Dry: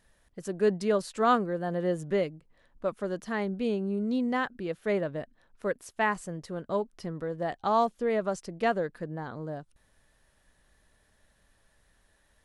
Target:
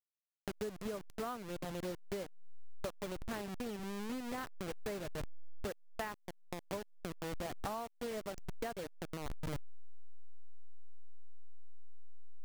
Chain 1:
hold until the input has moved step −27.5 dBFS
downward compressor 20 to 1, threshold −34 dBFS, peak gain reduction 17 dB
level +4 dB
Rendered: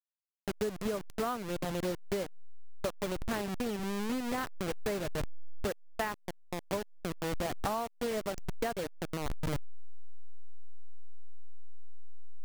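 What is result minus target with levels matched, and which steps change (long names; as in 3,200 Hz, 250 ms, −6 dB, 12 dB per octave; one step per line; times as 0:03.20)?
downward compressor: peak gain reduction −7 dB
change: downward compressor 20 to 1, threshold −41.5 dBFS, peak gain reduction 24 dB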